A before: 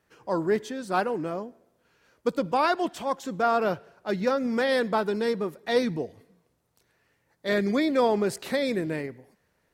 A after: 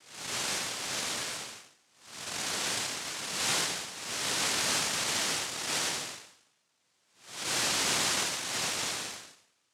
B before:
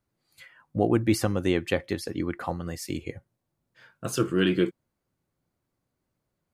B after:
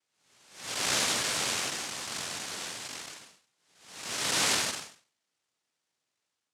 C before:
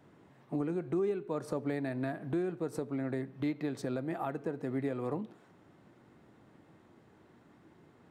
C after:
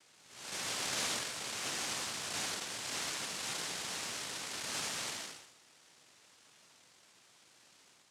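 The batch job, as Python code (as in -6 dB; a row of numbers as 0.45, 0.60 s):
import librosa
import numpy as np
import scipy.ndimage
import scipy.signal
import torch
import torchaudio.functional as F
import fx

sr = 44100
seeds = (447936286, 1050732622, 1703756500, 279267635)

y = fx.spec_blur(x, sr, span_ms=306.0)
y = fx.noise_vocoder(y, sr, seeds[0], bands=1)
y = y * 10.0 ** (-1.5 / 20.0)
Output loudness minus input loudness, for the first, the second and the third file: -3.0, -2.0, -1.0 LU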